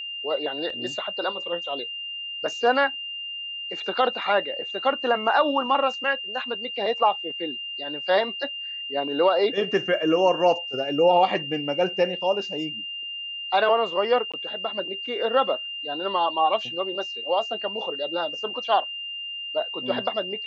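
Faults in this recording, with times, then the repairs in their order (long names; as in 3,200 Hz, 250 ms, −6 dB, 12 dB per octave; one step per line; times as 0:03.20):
whistle 2,800 Hz −31 dBFS
0:00.70: drop-out 2.9 ms
0:14.32–0:14.34: drop-out 16 ms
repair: notch filter 2,800 Hz, Q 30
repair the gap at 0:00.70, 2.9 ms
repair the gap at 0:14.32, 16 ms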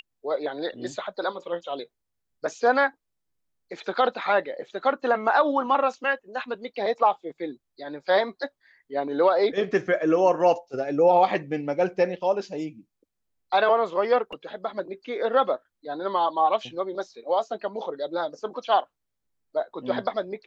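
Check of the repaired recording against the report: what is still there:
none of them is left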